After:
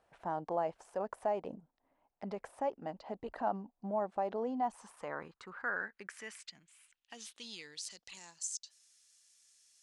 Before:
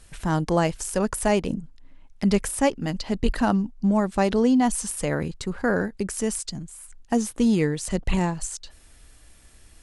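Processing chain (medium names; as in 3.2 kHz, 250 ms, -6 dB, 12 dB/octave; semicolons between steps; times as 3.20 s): peak limiter -15 dBFS, peak gain reduction 7.5 dB; band-pass sweep 730 Hz -> 6.1 kHz, 4.46–8.32 s; trim -2.5 dB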